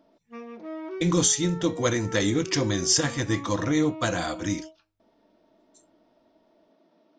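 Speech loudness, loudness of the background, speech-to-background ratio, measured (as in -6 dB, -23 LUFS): -25.0 LUFS, -39.0 LUFS, 14.0 dB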